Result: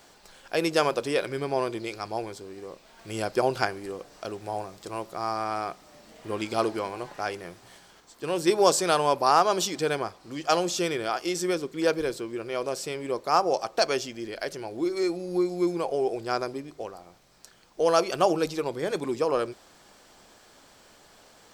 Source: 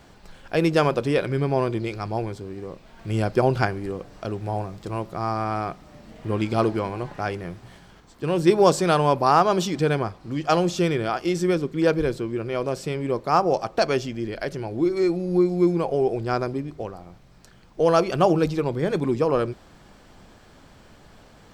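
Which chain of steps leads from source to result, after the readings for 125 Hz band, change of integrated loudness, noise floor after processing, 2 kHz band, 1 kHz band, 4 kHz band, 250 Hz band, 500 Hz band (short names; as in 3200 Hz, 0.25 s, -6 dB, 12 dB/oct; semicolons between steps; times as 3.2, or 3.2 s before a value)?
-14.0 dB, -4.0 dB, -56 dBFS, -2.0 dB, -2.5 dB, +1.5 dB, -7.0 dB, -4.0 dB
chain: tone controls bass -13 dB, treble +8 dB; gain -2.5 dB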